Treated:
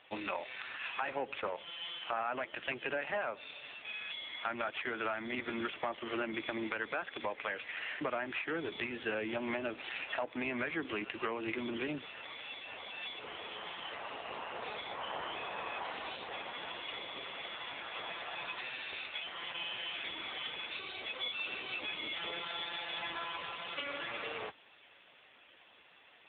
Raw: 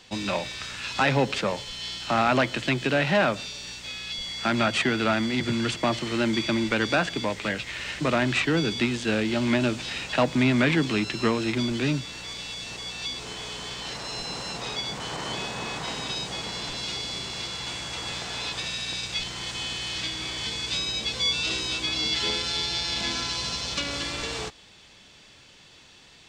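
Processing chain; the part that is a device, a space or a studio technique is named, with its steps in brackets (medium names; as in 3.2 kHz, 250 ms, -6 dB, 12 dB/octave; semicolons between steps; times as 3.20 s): voicemail (band-pass 440–2800 Hz; compression 10:1, threshold -32 dBFS, peak gain reduction 14 dB; trim +1 dB; AMR-NB 5.9 kbps 8 kHz)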